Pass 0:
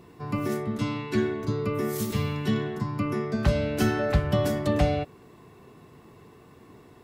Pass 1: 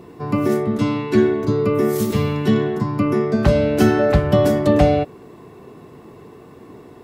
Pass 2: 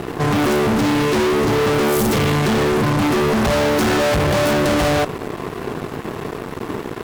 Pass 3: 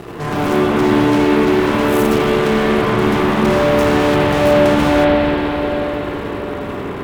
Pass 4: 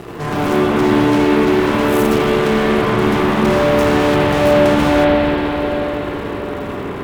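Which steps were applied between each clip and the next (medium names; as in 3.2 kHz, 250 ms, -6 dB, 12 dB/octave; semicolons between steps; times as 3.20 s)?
peaking EQ 410 Hz +7 dB 2.6 oct; trim +4.5 dB
fuzz box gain 36 dB, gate -43 dBFS; trim -2.5 dB
reverberation RT60 5.3 s, pre-delay 46 ms, DRR -7 dB; trim -5.5 dB
crackle 65 per s -33 dBFS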